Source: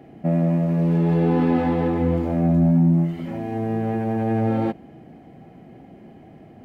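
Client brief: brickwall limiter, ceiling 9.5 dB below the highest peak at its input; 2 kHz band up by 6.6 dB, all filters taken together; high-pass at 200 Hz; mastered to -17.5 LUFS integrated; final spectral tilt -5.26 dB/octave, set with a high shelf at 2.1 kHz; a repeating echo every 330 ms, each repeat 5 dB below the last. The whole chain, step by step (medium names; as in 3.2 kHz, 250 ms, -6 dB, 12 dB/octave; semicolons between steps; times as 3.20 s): high-pass 200 Hz; peaking EQ 2 kHz +3.5 dB; treble shelf 2.1 kHz +8.5 dB; peak limiter -19.5 dBFS; feedback delay 330 ms, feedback 56%, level -5 dB; trim +9 dB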